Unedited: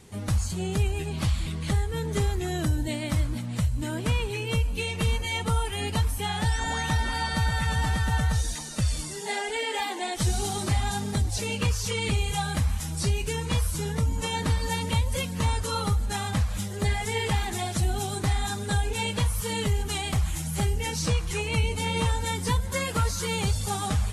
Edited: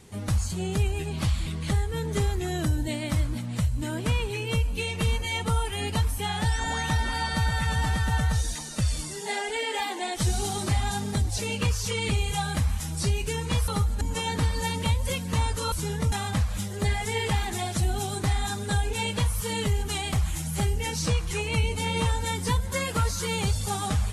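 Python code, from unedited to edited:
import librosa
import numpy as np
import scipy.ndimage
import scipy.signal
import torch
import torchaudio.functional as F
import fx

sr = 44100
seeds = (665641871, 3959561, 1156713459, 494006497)

y = fx.edit(x, sr, fx.swap(start_s=13.68, length_s=0.4, other_s=15.79, other_length_s=0.33), tone=tone)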